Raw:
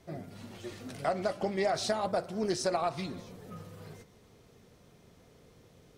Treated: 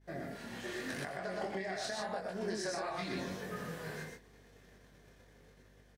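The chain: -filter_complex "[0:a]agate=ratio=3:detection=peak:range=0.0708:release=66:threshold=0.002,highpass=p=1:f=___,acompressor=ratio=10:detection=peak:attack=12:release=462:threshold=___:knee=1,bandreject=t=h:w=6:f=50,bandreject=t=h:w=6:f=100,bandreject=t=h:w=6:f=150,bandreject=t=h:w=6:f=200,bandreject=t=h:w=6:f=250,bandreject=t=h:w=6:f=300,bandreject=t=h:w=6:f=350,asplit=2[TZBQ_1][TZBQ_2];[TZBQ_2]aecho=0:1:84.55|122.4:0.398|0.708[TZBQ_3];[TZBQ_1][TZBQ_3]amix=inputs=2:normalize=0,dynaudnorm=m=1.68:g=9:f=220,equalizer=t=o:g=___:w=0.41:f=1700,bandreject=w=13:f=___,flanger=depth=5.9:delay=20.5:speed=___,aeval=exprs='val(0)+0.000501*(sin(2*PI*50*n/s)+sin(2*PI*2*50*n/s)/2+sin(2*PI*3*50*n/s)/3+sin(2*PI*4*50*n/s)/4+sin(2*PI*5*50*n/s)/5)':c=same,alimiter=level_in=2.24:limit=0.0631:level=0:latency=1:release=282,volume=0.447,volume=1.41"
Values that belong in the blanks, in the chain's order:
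160, 0.0141, 12, 1300, 0.87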